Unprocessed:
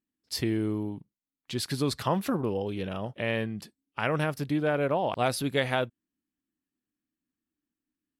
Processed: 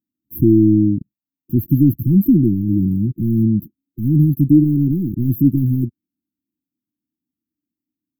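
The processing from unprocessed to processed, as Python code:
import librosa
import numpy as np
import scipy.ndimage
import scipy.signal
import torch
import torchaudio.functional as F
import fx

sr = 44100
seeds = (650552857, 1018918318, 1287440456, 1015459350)

y = scipy.signal.sosfilt(scipy.signal.butter(4, 72.0, 'highpass', fs=sr, output='sos'), x)
y = fx.leveller(y, sr, passes=3)
y = fx.brickwall_bandstop(y, sr, low_hz=360.0, high_hz=12000.0)
y = y * 10.0 ** (8.5 / 20.0)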